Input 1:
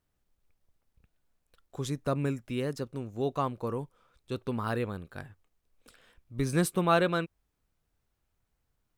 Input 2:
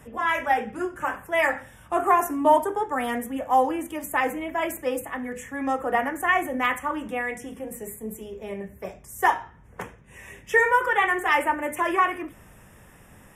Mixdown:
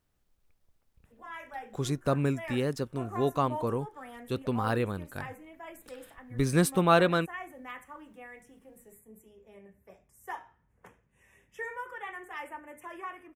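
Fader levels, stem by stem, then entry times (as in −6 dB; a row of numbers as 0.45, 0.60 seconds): +2.5, −19.0 decibels; 0.00, 1.05 seconds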